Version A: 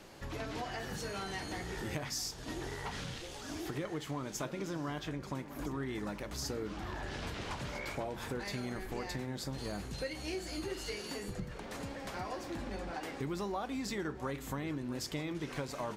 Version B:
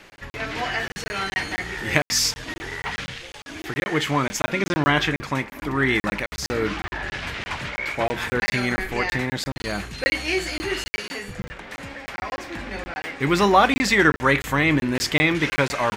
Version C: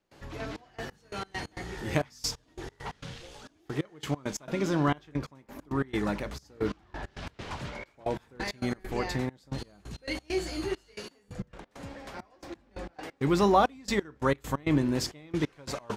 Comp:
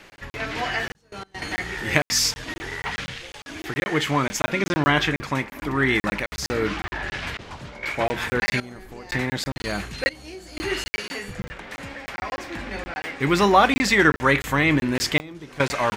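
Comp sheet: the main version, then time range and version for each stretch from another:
B
0:00.95–0:01.42: punch in from C
0:07.37–0:07.83: punch in from C
0:08.60–0:09.11: punch in from A
0:10.09–0:10.57: punch in from A
0:15.20–0:15.60: punch in from A

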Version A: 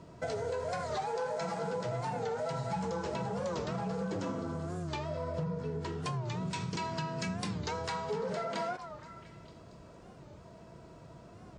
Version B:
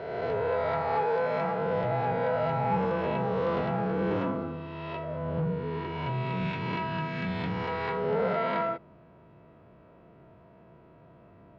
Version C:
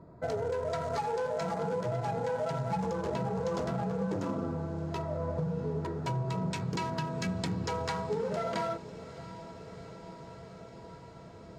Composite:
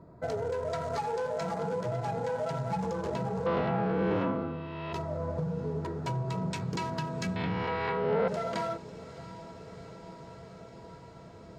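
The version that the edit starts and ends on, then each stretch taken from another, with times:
C
0:03.46–0:04.93: punch in from B
0:07.36–0:08.28: punch in from B
not used: A

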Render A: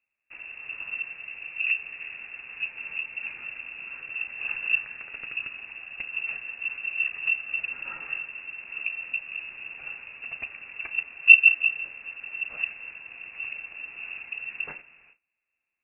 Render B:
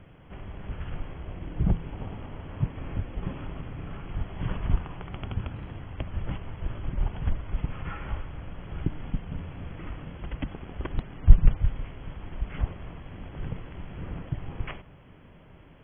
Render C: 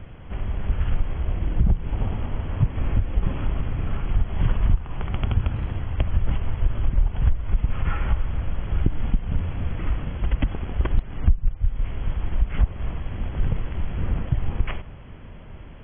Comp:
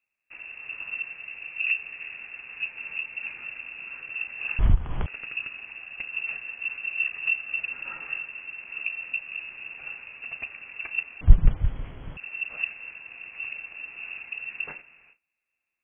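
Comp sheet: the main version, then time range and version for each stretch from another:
A
0:04.59–0:05.06: punch in from C
0:11.21–0:12.17: punch in from B

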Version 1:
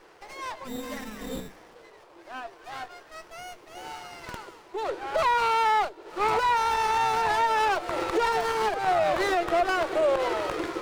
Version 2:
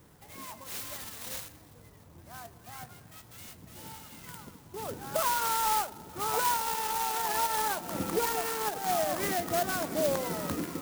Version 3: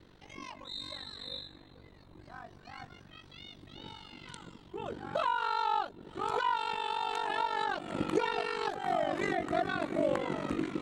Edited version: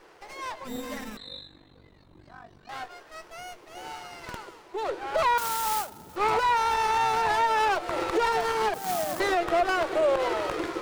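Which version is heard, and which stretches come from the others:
1
0:01.17–0:02.69: punch in from 3
0:05.38–0:06.16: punch in from 2
0:08.74–0:09.20: punch in from 2

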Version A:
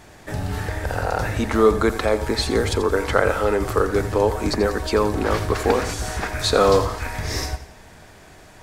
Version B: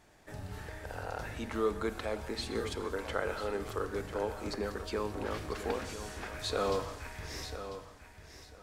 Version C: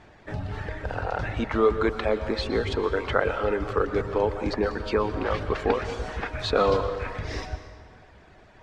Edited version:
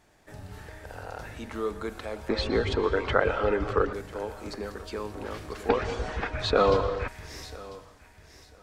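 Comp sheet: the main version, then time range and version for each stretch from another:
B
0:02.29–0:03.93: punch in from C
0:05.69–0:07.08: punch in from C
not used: A

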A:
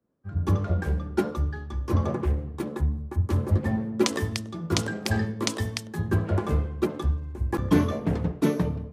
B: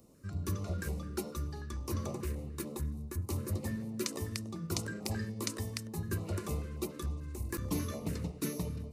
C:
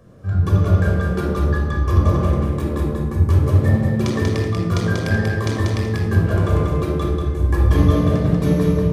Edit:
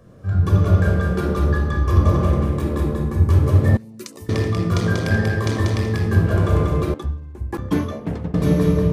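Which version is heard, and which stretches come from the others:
C
0:03.77–0:04.29: punch in from B
0:06.94–0:08.34: punch in from A

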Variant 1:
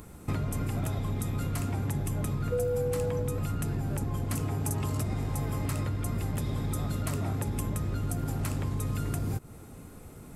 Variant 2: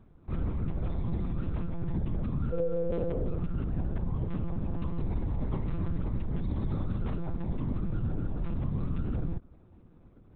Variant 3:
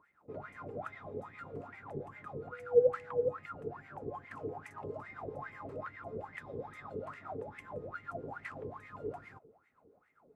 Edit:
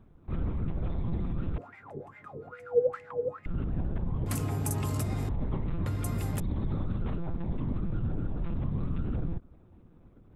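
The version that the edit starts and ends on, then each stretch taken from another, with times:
2
0:01.58–0:03.46: punch in from 3
0:04.26–0:05.29: punch in from 1
0:05.86–0:06.40: punch in from 1

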